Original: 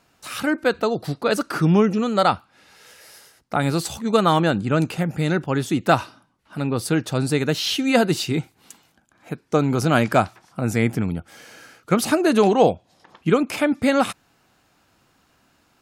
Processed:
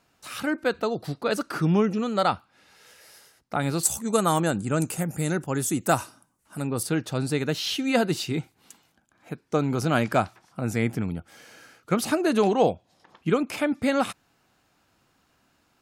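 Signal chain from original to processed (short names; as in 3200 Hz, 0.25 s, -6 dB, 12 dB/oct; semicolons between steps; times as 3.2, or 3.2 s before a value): 3.83–6.83 resonant high shelf 5700 Hz +13 dB, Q 1.5; gain -5 dB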